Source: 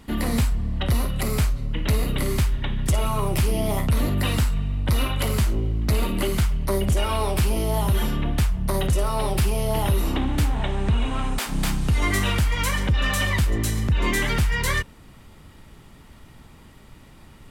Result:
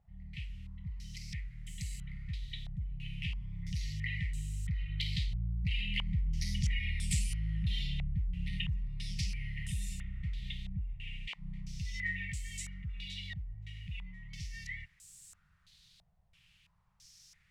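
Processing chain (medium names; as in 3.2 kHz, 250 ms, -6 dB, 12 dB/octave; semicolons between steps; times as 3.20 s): Doppler pass-by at 6.76 s, 14 m/s, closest 8.5 m; compression 3:1, threshold -31 dBFS, peak gain reduction 10.5 dB; FFT band-reject 200–1800 Hz; added noise violet -54 dBFS; step-sequenced low-pass 3 Hz 710–7800 Hz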